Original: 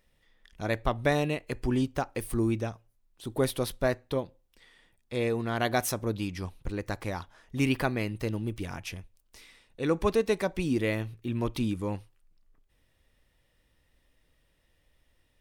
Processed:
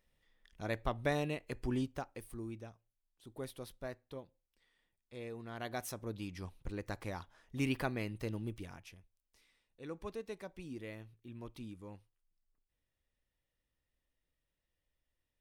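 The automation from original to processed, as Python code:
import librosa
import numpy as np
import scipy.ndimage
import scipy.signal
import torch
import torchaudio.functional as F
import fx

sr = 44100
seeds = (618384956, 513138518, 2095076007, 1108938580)

y = fx.gain(x, sr, db=fx.line((1.78, -8.0), (2.38, -17.0), (5.26, -17.0), (6.58, -8.0), (8.5, -8.0), (8.96, -18.0)))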